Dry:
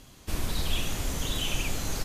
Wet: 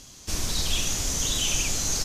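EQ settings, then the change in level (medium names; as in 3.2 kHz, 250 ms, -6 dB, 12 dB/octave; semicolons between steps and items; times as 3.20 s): peaking EQ 6 kHz +14 dB 1.1 oct; 0.0 dB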